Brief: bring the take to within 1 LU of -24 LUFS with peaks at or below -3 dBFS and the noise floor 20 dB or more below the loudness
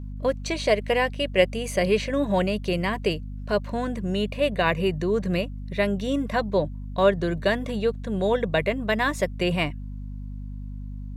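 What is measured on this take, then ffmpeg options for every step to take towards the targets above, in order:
hum 50 Hz; highest harmonic 250 Hz; hum level -32 dBFS; loudness -25.0 LUFS; peak level -5.0 dBFS; loudness target -24.0 LUFS
-> -af "bandreject=f=50:t=h:w=6,bandreject=f=100:t=h:w=6,bandreject=f=150:t=h:w=6,bandreject=f=200:t=h:w=6,bandreject=f=250:t=h:w=6"
-af "volume=1.12"

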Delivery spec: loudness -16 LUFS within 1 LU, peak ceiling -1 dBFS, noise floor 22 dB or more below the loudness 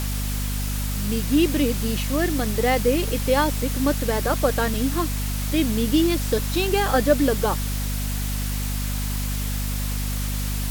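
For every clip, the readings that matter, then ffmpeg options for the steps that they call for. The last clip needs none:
hum 50 Hz; highest harmonic 250 Hz; hum level -24 dBFS; noise floor -26 dBFS; noise floor target -45 dBFS; loudness -23.0 LUFS; peak level -4.5 dBFS; loudness target -16.0 LUFS
-> -af "bandreject=f=50:t=h:w=4,bandreject=f=100:t=h:w=4,bandreject=f=150:t=h:w=4,bandreject=f=200:t=h:w=4,bandreject=f=250:t=h:w=4"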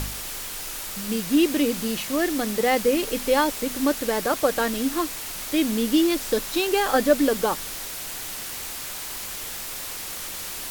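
hum not found; noise floor -34 dBFS; noise floor target -47 dBFS
-> -af "afftdn=nr=13:nf=-34"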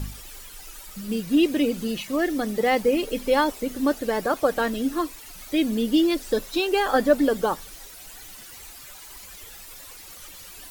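noise floor -43 dBFS; noise floor target -46 dBFS
-> -af "afftdn=nr=6:nf=-43"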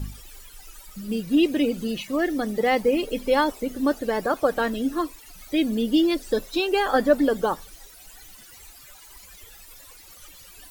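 noise floor -48 dBFS; loudness -23.5 LUFS; peak level -6.5 dBFS; loudness target -16.0 LUFS
-> -af "volume=2.37,alimiter=limit=0.891:level=0:latency=1"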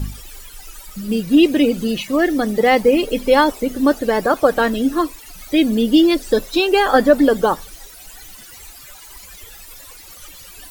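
loudness -16.5 LUFS; peak level -1.0 dBFS; noise floor -40 dBFS

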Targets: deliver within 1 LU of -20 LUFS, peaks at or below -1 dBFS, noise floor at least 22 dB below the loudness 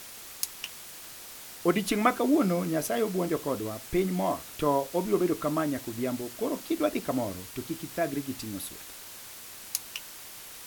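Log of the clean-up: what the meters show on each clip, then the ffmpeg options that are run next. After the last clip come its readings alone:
noise floor -45 dBFS; noise floor target -52 dBFS; loudness -30.0 LUFS; peak level -8.0 dBFS; loudness target -20.0 LUFS
-> -af "afftdn=nr=7:nf=-45"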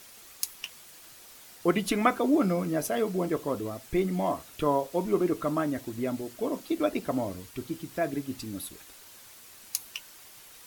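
noise floor -51 dBFS; noise floor target -52 dBFS
-> -af "afftdn=nr=6:nf=-51"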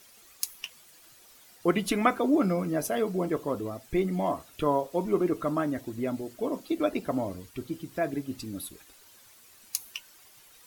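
noise floor -56 dBFS; loudness -30.0 LUFS; peak level -8.5 dBFS; loudness target -20.0 LUFS
-> -af "volume=3.16,alimiter=limit=0.891:level=0:latency=1"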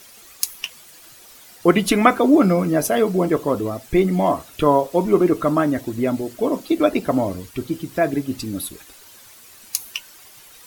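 loudness -20.0 LUFS; peak level -1.0 dBFS; noise floor -46 dBFS

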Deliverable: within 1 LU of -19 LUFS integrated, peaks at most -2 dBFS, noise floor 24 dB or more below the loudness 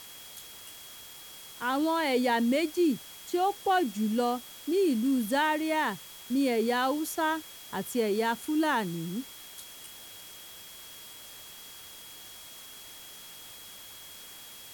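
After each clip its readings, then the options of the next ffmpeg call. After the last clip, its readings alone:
steady tone 3.3 kHz; tone level -51 dBFS; noise floor -47 dBFS; noise floor target -53 dBFS; loudness -28.5 LUFS; peak level -15.0 dBFS; loudness target -19.0 LUFS
-> -af "bandreject=f=3300:w=30"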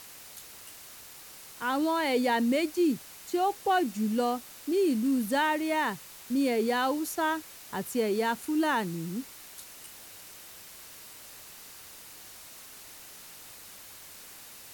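steady tone not found; noise floor -48 dBFS; noise floor target -53 dBFS
-> -af "afftdn=nr=6:nf=-48"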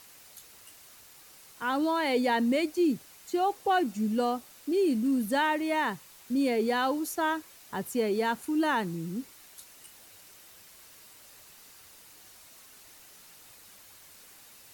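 noise floor -54 dBFS; loudness -29.0 LUFS; peak level -15.5 dBFS; loudness target -19.0 LUFS
-> -af "volume=3.16"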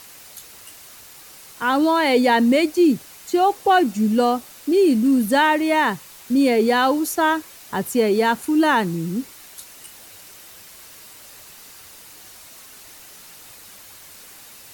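loudness -19.0 LUFS; peak level -5.5 dBFS; noise floor -44 dBFS

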